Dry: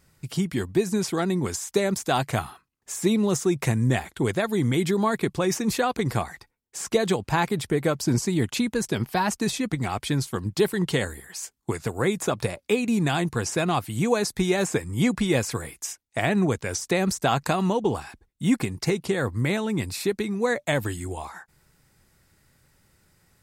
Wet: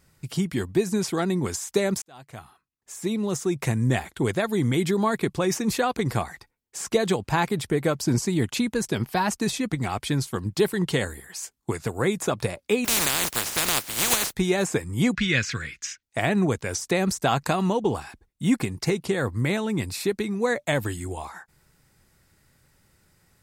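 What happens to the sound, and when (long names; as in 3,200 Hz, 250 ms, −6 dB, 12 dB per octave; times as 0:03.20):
0:02.02–0:03.97: fade in
0:12.84–0:14.32: compressing power law on the bin magnitudes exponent 0.17
0:15.15–0:16.03: drawn EQ curve 180 Hz 0 dB, 350 Hz −7 dB, 590 Hz −10 dB, 870 Hz −15 dB, 1,500 Hz +8 dB, 2,400 Hz +8 dB, 6,500 Hz +1 dB, 10,000 Hz −19 dB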